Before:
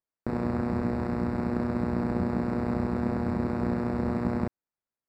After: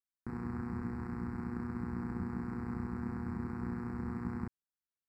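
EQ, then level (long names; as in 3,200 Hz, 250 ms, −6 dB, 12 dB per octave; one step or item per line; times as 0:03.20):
phaser with its sweep stopped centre 1,400 Hz, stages 4
−8.0 dB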